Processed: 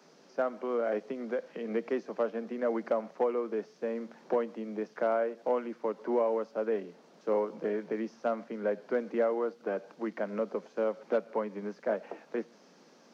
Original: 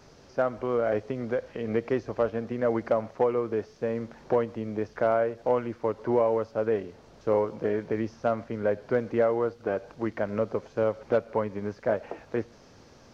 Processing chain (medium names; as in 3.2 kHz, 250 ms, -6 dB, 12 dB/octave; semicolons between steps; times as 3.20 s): steep high-pass 160 Hz 96 dB/octave; trim -4.5 dB